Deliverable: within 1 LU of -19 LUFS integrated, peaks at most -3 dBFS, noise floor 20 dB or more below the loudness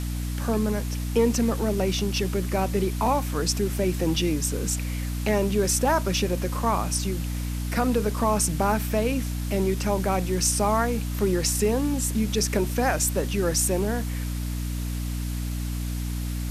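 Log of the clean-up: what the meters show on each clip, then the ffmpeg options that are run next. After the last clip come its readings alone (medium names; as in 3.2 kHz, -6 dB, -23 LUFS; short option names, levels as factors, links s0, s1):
hum 60 Hz; highest harmonic 300 Hz; hum level -26 dBFS; noise floor -29 dBFS; noise floor target -46 dBFS; loudness -25.5 LUFS; peak level -9.0 dBFS; loudness target -19.0 LUFS
-> -af "bandreject=f=60:t=h:w=6,bandreject=f=120:t=h:w=6,bandreject=f=180:t=h:w=6,bandreject=f=240:t=h:w=6,bandreject=f=300:t=h:w=6"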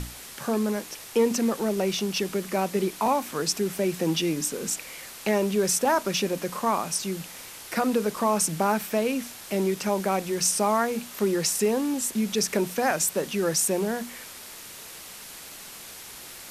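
hum not found; noise floor -43 dBFS; noise floor target -46 dBFS
-> -af "afftdn=nr=6:nf=-43"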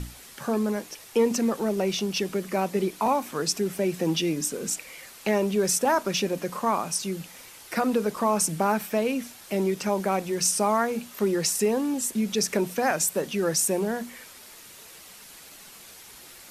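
noise floor -47 dBFS; loudness -26.0 LUFS; peak level -11.0 dBFS; loudness target -19.0 LUFS
-> -af "volume=2.24"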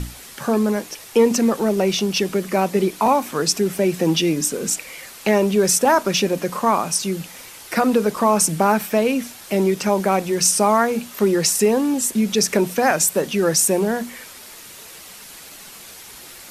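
loudness -19.0 LUFS; peak level -4.0 dBFS; noise floor -40 dBFS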